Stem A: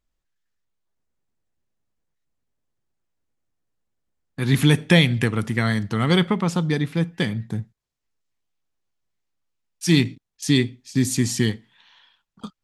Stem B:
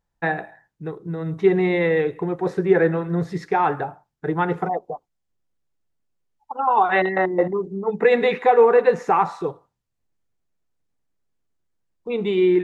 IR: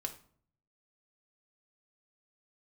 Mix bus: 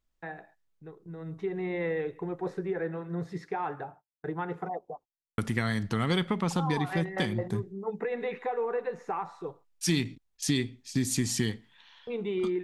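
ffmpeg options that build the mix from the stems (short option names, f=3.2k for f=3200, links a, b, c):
-filter_complex "[0:a]asubboost=boost=3:cutoff=57,volume=-2dB,asplit=3[a][b][c];[a]atrim=end=2.83,asetpts=PTS-STARTPTS,afade=t=out:st=2.826:d=0.004:c=hsin[d];[b]atrim=start=2.83:end=5.38,asetpts=PTS-STARTPTS,volume=0[e];[c]atrim=start=5.38,asetpts=PTS-STARTPTS,afade=t=in:d=0.004:c=hsin[f];[d][e][f]concat=n=3:v=0:a=1[g];[1:a]acrossover=split=2900[h][i];[i]acompressor=threshold=-42dB:ratio=4:attack=1:release=60[j];[h][j]amix=inputs=2:normalize=0,agate=range=-23dB:threshold=-40dB:ratio=16:detection=peak,alimiter=limit=-13dB:level=0:latency=1:release=474,volume=-9.5dB,afade=t=in:st=0.97:d=0.63:silence=0.473151[k];[g][k]amix=inputs=2:normalize=0,acompressor=threshold=-25dB:ratio=3"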